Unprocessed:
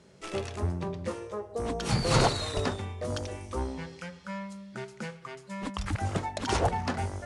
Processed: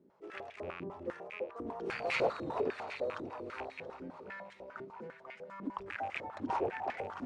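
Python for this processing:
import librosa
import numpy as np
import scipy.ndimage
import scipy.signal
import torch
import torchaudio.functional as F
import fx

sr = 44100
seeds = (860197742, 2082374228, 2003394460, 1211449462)

y = fx.rattle_buzz(x, sr, strikes_db=-30.0, level_db=-21.0)
y = fx.echo_alternate(y, sr, ms=338, hz=860.0, feedback_pct=68, wet_db=-5.0)
y = fx.filter_held_bandpass(y, sr, hz=10.0, low_hz=300.0, high_hz=2200.0)
y = y * librosa.db_to_amplitude(2.0)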